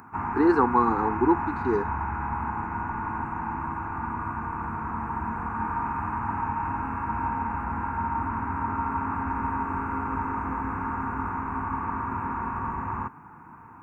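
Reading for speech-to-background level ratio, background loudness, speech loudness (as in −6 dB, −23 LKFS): 6.0 dB, −30.0 LKFS, −24.0 LKFS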